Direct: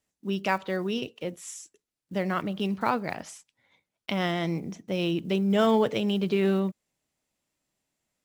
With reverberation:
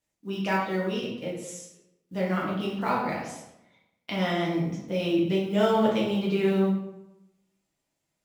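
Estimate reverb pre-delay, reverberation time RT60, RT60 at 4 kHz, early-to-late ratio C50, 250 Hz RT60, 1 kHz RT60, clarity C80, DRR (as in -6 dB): 4 ms, 0.90 s, 0.60 s, 2.5 dB, 0.95 s, 0.85 s, 6.0 dB, -5.0 dB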